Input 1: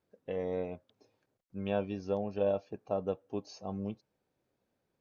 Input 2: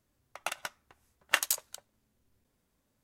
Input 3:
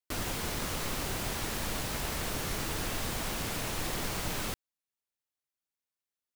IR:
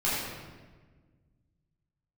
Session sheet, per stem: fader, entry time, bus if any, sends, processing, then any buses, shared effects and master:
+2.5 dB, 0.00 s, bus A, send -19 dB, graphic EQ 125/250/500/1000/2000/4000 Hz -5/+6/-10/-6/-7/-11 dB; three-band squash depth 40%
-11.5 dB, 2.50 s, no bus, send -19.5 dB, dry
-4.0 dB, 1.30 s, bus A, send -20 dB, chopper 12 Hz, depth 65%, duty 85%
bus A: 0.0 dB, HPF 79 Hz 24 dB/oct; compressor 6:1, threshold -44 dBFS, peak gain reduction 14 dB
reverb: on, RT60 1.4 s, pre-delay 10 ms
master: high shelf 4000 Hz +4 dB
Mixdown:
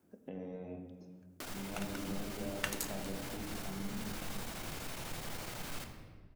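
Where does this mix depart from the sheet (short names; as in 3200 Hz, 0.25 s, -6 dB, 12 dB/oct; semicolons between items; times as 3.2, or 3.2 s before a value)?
stem 2: entry 2.50 s -> 1.30 s; master: missing high shelf 4000 Hz +4 dB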